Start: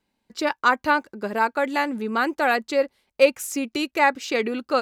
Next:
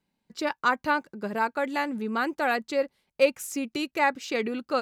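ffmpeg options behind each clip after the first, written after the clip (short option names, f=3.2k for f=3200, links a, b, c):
-af "equalizer=f=160:t=o:w=0.57:g=9.5,volume=-5dB"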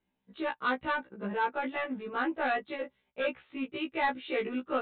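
-af "aresample=8000,asoftclip=type=tanh:threshold=-19dB,aresample=44100,afftfilt=real='re*1.73*eq(mod(b,3),0)':imag='im*1.73*eq(mod(b,3),0)':win_size=2048:overlap=0.75"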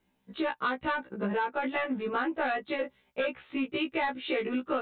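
-af "acompressor=threshold=-35dB:ratio=6,volume=8dB"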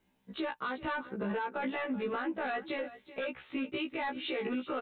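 -af "alimiter=level_in=3dB:limit=-24dB:level=0:latency=1:release=60,volume=-3dB,aecho=1:1:382:0.158"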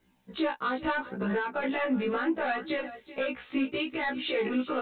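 -af "flanger=delay=16:depth=3.7:speed=0.74,volume=8dB"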